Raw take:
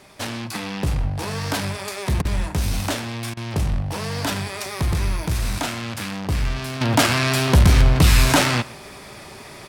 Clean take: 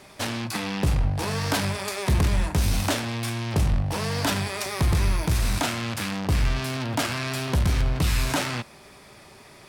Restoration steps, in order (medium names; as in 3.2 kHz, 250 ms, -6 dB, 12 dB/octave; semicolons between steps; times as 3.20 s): interpolate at 2.22/3.34 s, 29 ms; inverse comb 124 ms -21.5 dB; trim 0 dB, from 6.81 s -9 dB